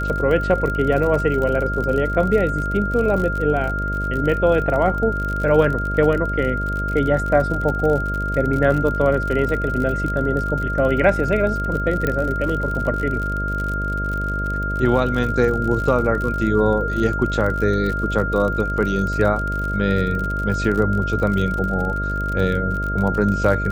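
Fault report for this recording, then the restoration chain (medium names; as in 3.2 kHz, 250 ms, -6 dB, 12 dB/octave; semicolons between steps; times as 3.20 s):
buzz 50 Hz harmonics 13 -25 dBFS
crackle 50 per s -25 dBFS
whine 1.4 kHz -24 dBFS
12.07 s: pop -9 dBFS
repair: de-click; de-hum 50 Hz, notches 13; band-stop 1.4 kHz, Q 30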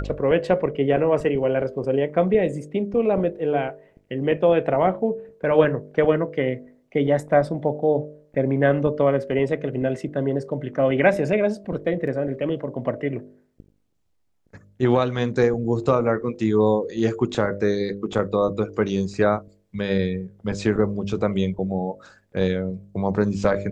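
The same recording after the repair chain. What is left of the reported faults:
12.07 s: pop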